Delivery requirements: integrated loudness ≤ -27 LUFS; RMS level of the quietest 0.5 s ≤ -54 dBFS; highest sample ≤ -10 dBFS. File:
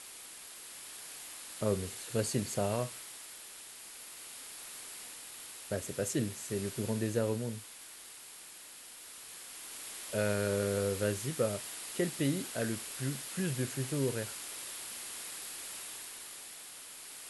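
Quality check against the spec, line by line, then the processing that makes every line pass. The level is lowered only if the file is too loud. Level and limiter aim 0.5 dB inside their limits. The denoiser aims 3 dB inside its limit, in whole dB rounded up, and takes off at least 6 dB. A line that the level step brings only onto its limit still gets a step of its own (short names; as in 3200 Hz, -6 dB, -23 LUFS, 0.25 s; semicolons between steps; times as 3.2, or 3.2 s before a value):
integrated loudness -37.0 LUFS: OK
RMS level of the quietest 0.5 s -51 dBFS: fail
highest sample -18.0 dBFS: OK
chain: denoiser 6 dB, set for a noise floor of -51 dBFS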